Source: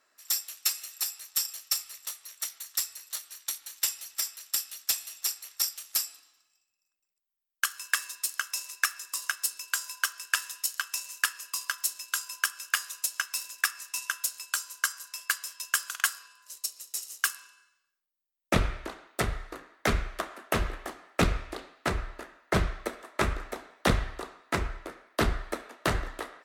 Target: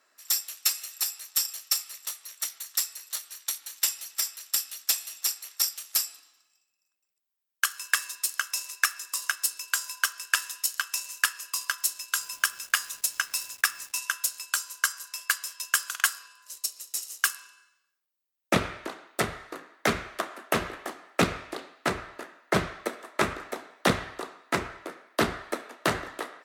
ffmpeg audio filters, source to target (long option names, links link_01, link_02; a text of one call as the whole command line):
ffmpeg -i in.wav -filter_complex "[0:a]highpass=150,asettb=1/sr,asplit=3[link_01][link_02][link_03];[link_01]atrim=end=12.184[link_04];[link_02]atrim=start=12.18:end=13.93,asetpts=PTS-STARTPTS,afade=type=in:duration=0.004:curve=qsin,afade=type=out:start_time=1.746:duration=0.004:curve=qsin,acrusher=bits=7:mix=0:aa=0.5[link_05];[link_03]atrim=start=13.926[link_06];[link_04][link_05]acrossfade=duration=0.004:curve1=hsin:curve2=qsin[link_07];[link_07][link_06]acrossfade=duration=0.004:curve1=qsin:curve2=hsin,volume=2.5dB" out.wav